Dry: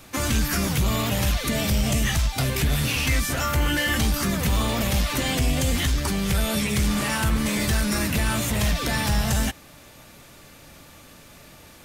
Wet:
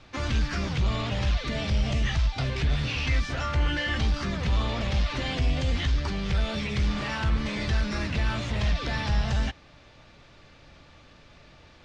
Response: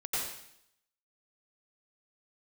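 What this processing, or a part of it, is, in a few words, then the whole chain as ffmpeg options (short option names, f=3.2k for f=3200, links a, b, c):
low shelf boost with a cut just above: -af "lowpass=f=5k:w=0.5412,lowpass=f=5k:w=1.3066,lowshelf=f=100:g=5.5,equalizer=f=220:t=o:w=1:g=-3.5,volume=-5dB"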